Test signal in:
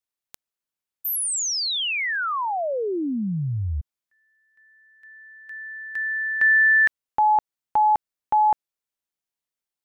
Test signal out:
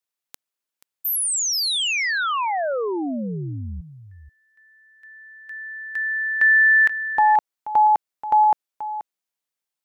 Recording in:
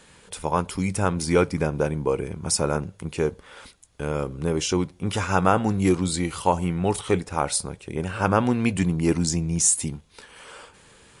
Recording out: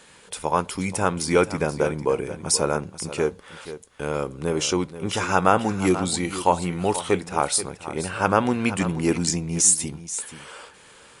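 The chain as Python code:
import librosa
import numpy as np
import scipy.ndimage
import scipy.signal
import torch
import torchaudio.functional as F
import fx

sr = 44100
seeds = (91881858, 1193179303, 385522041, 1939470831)

y = fx.low_shelf(x, sr, hz=180.0, db=-10.0)
y = y + 10.0 ** (-13.0 / 20.0) * np.pad(y, (int(481 * sr / 1000.0), 0))[:len(y)]
y = y * 10.0 ** (2.5 / 20.0)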